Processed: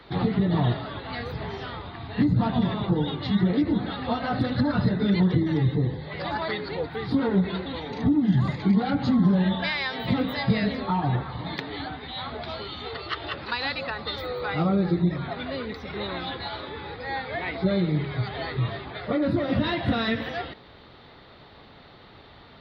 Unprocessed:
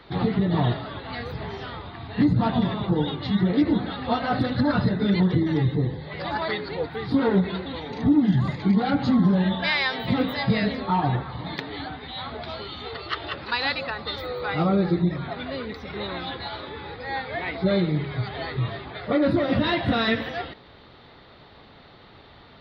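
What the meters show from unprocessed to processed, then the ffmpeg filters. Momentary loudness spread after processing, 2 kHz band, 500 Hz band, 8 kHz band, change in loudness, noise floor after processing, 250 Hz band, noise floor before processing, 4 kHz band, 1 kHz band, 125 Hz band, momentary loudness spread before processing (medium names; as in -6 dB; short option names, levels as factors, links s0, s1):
12 LU, -2.5 dB, -2.0 dB, no reading, -1.5 dB, -50 dBFS, -1.0 dB, -50 dBFS, -2.0 dB, -2.5 dB, 0.0 dB, 13 LU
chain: -filter_complex "[0:a]acrossover=split=240[s0][s1];[s1]acompressor=threshold=0.0501:ratio=2.5[s2];[s0][s2]amix=inputs=2:normalize=0"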